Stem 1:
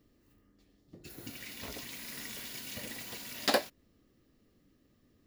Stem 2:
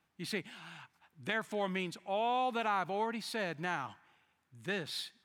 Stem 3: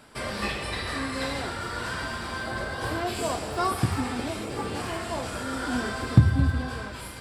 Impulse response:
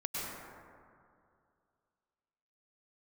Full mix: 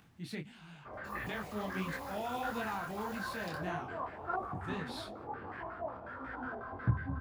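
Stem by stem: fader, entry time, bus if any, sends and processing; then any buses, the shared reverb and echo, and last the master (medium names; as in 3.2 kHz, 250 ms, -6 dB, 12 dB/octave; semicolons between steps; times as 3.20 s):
-4.0 dB, 0.00 s, no send, compression 2.5:1, threshold -46 dBFS, peak gain reduction 16 dB
-4.0 dB, 0.00 s, no send, peaking EQ 110 Hz +13 dB 2.2 oct; upward compressor, threshold -43 dBFS
-12.5 dB, 0.70 s, no send, step-sequenced low-pass 11 Hz 720–1800 Hz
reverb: none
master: detune thickener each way 55 cents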